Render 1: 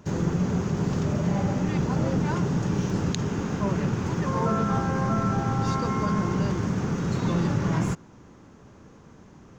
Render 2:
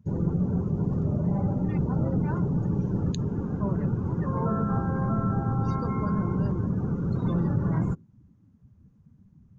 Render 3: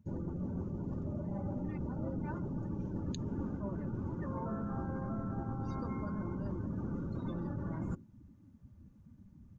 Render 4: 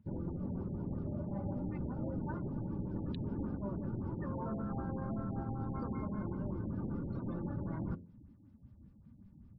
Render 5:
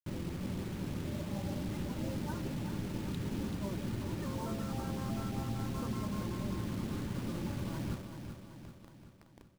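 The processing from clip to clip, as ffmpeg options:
ffmpeg -i in.wav -af "lowshelf=frequency=200:gain=7.5,afftdn=noise_reduction=22:noise_floor=-33,volume=-5dB" out.wav
ffmpeg -i in.wav -af "areverse,acompressor=threshold=-33dB:ratio=10,areverse,aecho=1:1:3.4:0.44" out.wav
ffmpeg -i in.wav -af "bandreject=frequency=87.43:width_type=h:width=4,bandreject=frequency=174.86:width_type=h:width=4,bandreject=frequency=262.29:width_type=h:width=4,bandreject=frequency=349.72:width_type=h:width=4,bandreject=frequency=437.15:width_type=h:width=4,bandreject=frequency=524.58:width_type=h:width=4,bandreject=frequency=612.01:width_type=h:width=4,afftfilt=real='re*lt(b*sr/1024,830*pow(5800/830,0.5+0.5*sin(2*PI*5.2*pts/sr)))':imag='im*lt(b*sr/1024,830*pow(5800/830,0.5+0.5*sin(2*PI*5.2*pts/sr)))':win_size=1024:overlap=0.75" out.wav
ffmpeg -i in.wav -af "acrusher=bits=7:mix=0:aa=0.000001,aecho=1:1:383|766|1149|1532|1915|2298:0.398|0.215|0.116|0.0627|0.0339|0.0183" out.wav

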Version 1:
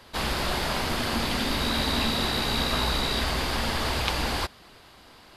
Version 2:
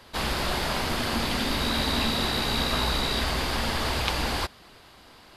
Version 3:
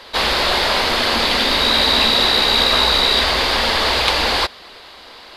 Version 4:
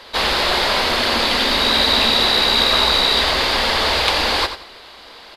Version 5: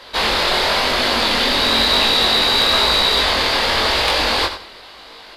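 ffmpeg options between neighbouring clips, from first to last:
ffmpeg -i in.wav -af anull out.wav
ffmpeg -i in.wav -filter_complex "[0:a]equalizer=frequency=125:width_type=o:width=1:gain=-7,equalizer=frequency=500:width_type=o:width=1:gain=8,equalizer=frequency=1000:width_type=o:width=1:gain=5,equalizer=frequency=2000:width_type=o:width=1:gain=6,equalizer=frequency=4000:width_type=o:width=1:gain=11,asplit=2[link_01][link_02];[link_02]acontrast=89,volume=3dB[link_03];[link_01][link_03]amix=inputs=2:normalize=0,volume=-9dB" out.wav
ffmpeg -i in.wav -af "aecho=1:1:89|178|267:0.299|0.0746|0.0187,volume=-1dB" out.wav
ffmpeg -i in.wav -af "asoftclip=type=tanh:threshold=-5.5dB,flanger=delay=19.5:depth=4.8:speed=0.97,volume=4dB" out.wav

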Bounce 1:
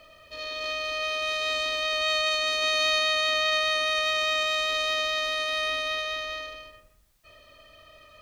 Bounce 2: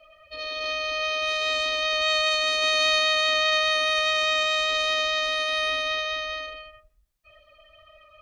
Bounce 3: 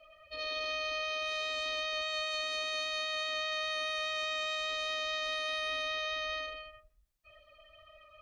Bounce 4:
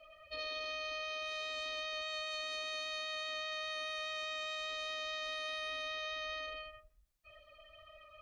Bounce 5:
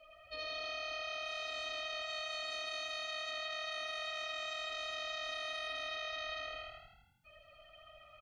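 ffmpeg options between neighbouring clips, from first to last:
ffmpeg -i in.wav -af "afftdn=noise_reduction=16:noise_floor=-46,volume=2.5dB" out.wav
ffmpeg -i in.wav -af "alimiter=limit=-24dB:level=0:latency=1,volume=-4.5dB" out.wav
ffmpeg -i in.wav -af "acompressor=threshold=-38dB:ratio=6" out.wav
ffmpeg -i in.wav -filter_complex "[0:a]asplit=8[link_01][link_02][link_03][link_04][link_05][link_06][link_07][link_08];[link_02]adelay=80,afreqshift=37,volume=-7dB[link_09];[link_03]adelay=160,afreqshift=74,volume=-12.2dB[link_10];[link_04]adelay=240,afreqshift=111,volume=-17.4dB[link_11];[link_05]adelay=320,afreqshift=148,volume=-22.6dB[link_12];[link_06]adelay=400,afreqshift=185,volume=-27.8dB[link_13];[link_07]adelay=480,afreqshift=222,volume=-33dB[link_14];[link_08]adelay=560,afreqshift=259,volume=-38.2dB[link_15];[link_01][link_09][link_10][link_11][link_12][link_13][link_14][link_15]amix=inputs=8:normalize=0,volume=-1.5dB" out.wav

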